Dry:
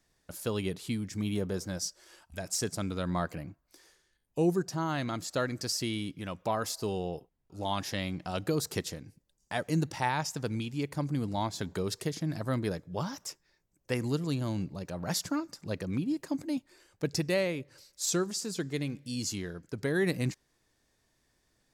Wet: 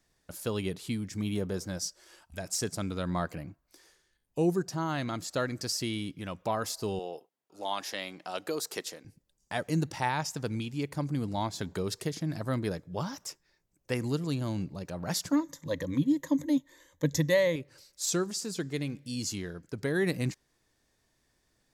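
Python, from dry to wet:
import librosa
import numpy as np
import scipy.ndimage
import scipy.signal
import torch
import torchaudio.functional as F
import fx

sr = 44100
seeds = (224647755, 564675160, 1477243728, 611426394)

y = fx.highpass(x, sr, hz=400.0, slope=12, at=(6.99, 9.05))
y = fx.ripple_eq(y, sr, per_octave=1.1, db=14, at=(15.32, 17.56))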